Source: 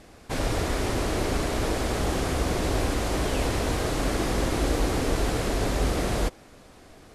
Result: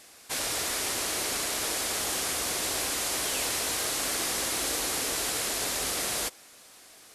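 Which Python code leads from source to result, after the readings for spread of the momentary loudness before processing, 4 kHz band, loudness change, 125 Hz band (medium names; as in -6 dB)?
2 LU, +4.5 dB, -1.0 dB, -19.5 dB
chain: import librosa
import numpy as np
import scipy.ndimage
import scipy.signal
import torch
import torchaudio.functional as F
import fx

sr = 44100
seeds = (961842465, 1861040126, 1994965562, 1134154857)

y = fx.tilt_eq(x, sr, slope=4.5)
y = y * 10.0 ** (-4.5 / 20.0)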